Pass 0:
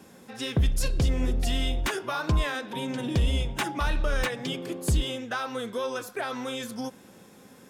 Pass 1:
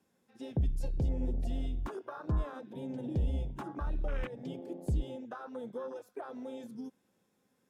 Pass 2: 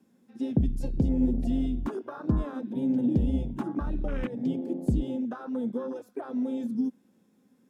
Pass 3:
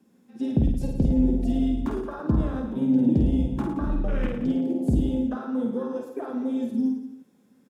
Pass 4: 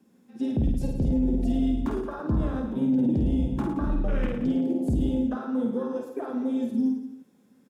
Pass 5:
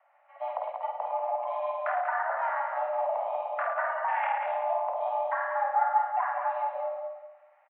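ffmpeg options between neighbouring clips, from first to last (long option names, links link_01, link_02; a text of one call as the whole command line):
ffmpeg -i in.wav -filter_complex "[0:a]afwtdn=0.0398,acrossover=split=480[link_01][link_02];[link_02]acompressor=threshold=-35dB:ratio=6[link_03];[link_01][link_03]amix=inputs=2:normalize=0,volume=-7dB" out.wav
ffmpeg -i in.wav -af "equalizer=frequency=240:width=1.4:gain=14,volume=2dB" out.wav
ffmpeg -i in.wav -af "aecho=1:1:50|107.5|173.6|249.7|337.1:0.631|0.398|0.251|0.158|0.1,volume=2dB" out.wav
ffmpeg -i in.wav -af "alimiter=limit=-17dB:level=0:latency=1:release=12" out.wav
ffmpeg -i in.wav -af "highpass=frequency=420:width_type=q:width=0.5412,highpass=frequency=420:width_type=q:width=1.307,lowpass=frequency=2100:width_type=q:width=0.5176,lowpass=frequency=2100:width_type=q:width=0.7071,lowpass=frequency=2100:width_type=q:width=1.932,afreqshift=340,aecho=1:1:190|380|570:0.501|0.13|0.0339,volume=6.5dB" out.wav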